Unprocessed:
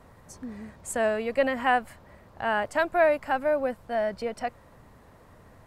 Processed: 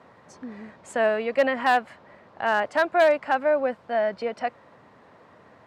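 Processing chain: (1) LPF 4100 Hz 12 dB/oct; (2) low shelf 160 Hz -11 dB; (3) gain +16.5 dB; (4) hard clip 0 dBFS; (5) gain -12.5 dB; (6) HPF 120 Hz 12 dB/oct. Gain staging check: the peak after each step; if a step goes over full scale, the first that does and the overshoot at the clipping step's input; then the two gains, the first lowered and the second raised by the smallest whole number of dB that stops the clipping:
-11.0, -11.0, +5.5, 0.0, -12.5, -10.0 dBFS; step 3, 5.5 dB; step 3 +10.5 dB, step 5 -6.5 dB

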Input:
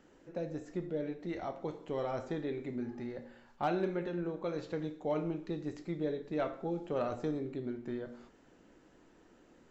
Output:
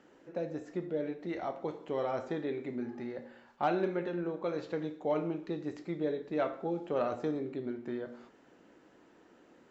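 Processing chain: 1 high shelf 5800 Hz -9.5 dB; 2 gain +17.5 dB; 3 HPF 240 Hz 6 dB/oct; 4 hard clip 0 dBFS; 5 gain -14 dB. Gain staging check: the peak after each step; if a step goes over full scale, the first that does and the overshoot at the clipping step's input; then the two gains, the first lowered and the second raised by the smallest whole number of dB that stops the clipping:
-23.0, -5.5, -4.5, -4.5, -18.5 dBFS; no overload

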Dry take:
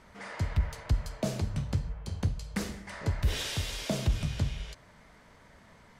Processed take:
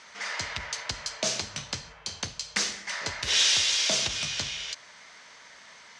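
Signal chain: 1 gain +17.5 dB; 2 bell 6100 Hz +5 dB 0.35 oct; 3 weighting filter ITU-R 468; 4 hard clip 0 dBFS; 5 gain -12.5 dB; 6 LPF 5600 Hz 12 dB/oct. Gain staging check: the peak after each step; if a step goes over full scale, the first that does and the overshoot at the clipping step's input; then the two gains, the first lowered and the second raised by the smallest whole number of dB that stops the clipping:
+0.5, +0.5, +6.0, 0.0, -12.5, -12.5 dBFS; step 1, 6.0 dB; step 1 +11.5 dB, step 5 -6.5 dB

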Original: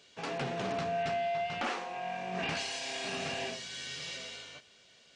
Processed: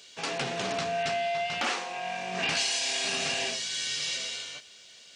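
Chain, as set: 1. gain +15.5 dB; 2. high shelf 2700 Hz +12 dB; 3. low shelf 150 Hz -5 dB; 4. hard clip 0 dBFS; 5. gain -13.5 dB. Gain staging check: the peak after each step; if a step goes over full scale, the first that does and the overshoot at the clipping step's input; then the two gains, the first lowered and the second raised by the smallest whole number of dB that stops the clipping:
-8.0, -3.0, -3.0, -3.0, -16.5 dBFS; no overload

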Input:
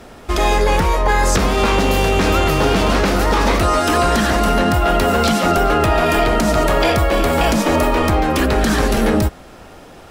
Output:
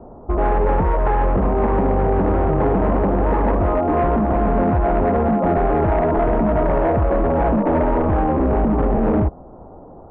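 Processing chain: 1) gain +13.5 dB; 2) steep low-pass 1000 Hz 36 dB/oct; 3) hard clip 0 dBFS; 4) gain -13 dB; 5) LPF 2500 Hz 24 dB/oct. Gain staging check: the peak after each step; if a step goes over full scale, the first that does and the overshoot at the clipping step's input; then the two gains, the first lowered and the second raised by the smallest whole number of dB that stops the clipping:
+8.5, +8.0, 0.0, -13.0, -12.0 dBFS; step 1, 8.0 dB; step 1 +5.5 dB, step 4 -5 dB

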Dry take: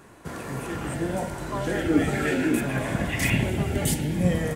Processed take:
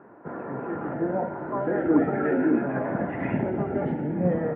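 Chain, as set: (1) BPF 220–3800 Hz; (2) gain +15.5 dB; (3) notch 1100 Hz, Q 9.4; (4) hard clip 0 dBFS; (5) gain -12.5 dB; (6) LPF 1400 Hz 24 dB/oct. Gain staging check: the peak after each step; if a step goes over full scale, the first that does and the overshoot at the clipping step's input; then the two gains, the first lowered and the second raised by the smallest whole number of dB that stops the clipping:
-8.5, +7.0, +7.0, 0.0, -12.5, -11.5 dBFS; step 2, 7.0 dB; step 2 +8.5 dB, step 5 -5.5 dB

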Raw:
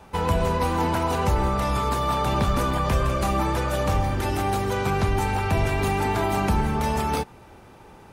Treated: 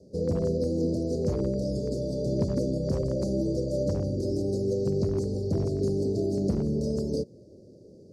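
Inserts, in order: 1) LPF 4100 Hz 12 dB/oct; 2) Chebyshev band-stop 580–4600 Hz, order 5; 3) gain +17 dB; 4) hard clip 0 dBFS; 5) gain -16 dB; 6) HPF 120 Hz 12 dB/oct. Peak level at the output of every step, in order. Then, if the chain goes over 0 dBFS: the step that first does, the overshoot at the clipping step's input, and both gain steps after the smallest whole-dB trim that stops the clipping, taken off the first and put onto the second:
-11.0, -12.5, +4.5, 0.0, -16.0, -14.0 dBFS; step 3, 4.5 dB; step 3 +12 dB, step 5 -11 dB

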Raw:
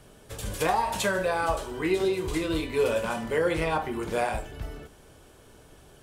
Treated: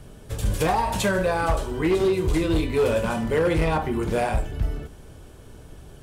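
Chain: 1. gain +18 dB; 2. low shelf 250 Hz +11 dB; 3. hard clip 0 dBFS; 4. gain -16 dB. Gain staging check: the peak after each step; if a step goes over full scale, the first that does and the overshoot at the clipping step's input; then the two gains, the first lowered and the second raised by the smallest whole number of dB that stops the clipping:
+6.5, +8.0, 0.0, -16.0 dBFS; step 1, 8.0 dB; step 1 +10 dB, step 4 -8 dB

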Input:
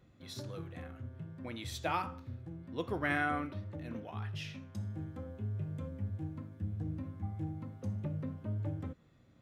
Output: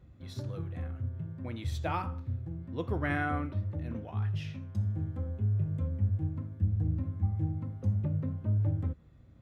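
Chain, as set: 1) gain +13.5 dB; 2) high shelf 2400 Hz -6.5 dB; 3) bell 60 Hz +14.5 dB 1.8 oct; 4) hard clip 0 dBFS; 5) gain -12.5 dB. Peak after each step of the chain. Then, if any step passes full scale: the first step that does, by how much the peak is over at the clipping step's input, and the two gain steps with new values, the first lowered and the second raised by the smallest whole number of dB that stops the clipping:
-5.0, -6.5, -6.0, -6.0, -18.5 dBFS; no overload

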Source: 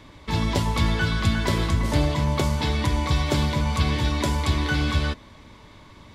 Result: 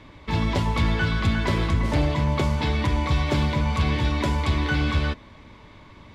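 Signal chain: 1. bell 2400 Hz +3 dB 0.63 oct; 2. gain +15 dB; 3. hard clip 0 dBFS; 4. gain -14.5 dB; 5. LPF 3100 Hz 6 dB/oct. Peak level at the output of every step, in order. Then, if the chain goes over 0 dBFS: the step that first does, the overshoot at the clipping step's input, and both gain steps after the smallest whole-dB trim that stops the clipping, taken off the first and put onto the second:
-9.0, +6.0, 0.0, -14.5, -14.5 dBFS; step 2, 6.0 dB; step 2 +9 dB, step 4 -8.5 dB

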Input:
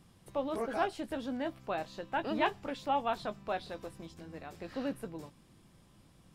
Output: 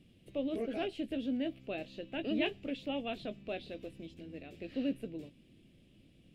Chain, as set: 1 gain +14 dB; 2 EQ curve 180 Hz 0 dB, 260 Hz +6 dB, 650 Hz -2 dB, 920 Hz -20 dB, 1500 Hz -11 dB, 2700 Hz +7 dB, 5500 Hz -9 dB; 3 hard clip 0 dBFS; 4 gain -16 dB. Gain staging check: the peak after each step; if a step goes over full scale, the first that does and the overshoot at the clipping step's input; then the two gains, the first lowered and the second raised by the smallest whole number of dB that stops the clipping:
-2.0, -4.5, -4.5, -20.5 dBFS; no overload

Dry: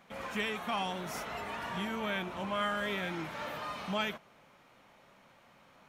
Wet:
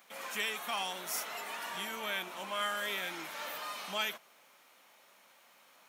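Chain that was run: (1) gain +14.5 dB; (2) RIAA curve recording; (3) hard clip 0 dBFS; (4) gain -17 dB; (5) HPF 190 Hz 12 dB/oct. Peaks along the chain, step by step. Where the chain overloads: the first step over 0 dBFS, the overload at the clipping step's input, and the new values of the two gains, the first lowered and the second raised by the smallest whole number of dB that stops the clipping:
-5.5, -3.0, -3.0, -20.0, -20.5 dBFS; no overload

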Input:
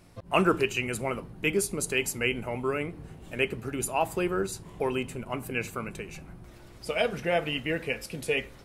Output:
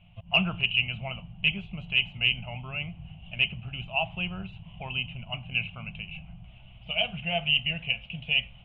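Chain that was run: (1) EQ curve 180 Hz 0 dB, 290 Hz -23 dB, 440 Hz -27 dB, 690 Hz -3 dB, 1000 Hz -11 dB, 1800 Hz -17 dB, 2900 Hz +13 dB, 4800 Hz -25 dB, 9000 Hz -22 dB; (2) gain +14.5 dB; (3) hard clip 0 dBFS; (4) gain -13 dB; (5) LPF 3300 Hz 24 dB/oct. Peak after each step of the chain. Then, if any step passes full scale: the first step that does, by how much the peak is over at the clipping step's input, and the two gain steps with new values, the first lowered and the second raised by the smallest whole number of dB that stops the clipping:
-8.0, +6.5, 0.0, -13.0, -11.5 dBFS; step 2, 6.5 dB; step 2 +7.5 dB, step 4 -6 dB

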